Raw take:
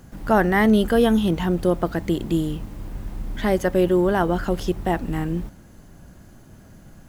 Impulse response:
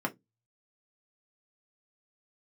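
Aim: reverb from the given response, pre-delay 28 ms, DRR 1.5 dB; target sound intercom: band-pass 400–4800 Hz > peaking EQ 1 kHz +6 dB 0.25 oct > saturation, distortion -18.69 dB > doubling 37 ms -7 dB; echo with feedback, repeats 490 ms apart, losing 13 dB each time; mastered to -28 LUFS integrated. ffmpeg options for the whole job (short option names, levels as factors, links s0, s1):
-filter_complex "[0:a]aecho=1:1:490|980|1470:0.224|0.0493|0.0108,asplit=2[s0][s1];[1:a]atrim=start_sample=2205,adelay=28[s2];[s1][s2]afir=irnorm=-1:irlink=0,volume=0.398[s3];[s0][s3]amix=inputs=2:normalize=0,highpass=400,lowpass=4800,equalizer=f=1000:t=o:w=0.25:g=6,asoftclip=threshold=0.335,asplit=2[s4][s5];[s5]adelay=37,volume=0.447[s6];[s4][s6]amix=inputs=2:normalize=0,volume=0.447"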